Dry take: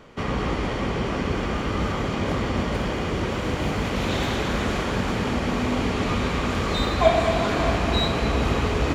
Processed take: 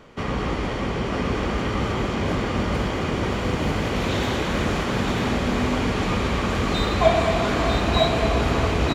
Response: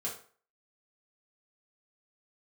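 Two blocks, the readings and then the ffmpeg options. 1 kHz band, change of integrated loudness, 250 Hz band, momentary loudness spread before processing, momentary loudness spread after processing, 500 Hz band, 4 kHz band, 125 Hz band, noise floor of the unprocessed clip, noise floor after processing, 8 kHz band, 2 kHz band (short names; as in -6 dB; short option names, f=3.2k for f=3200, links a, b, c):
+1.0 dB, +1.0 dB, +1.0 dB, 5 LU, 6 LU, +1.5 dB, +1.0 dB, +1.5 dB, -27 dBFS, -27 dBFS, +1.0 dB, +1.0 dB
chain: -af "aecho=1:1:950:0.596"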